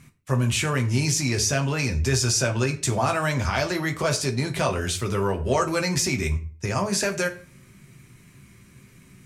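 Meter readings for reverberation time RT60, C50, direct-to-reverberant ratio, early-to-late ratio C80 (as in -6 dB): 0.40 s, 14.5 dB, 3.0 dB, 18.5 dB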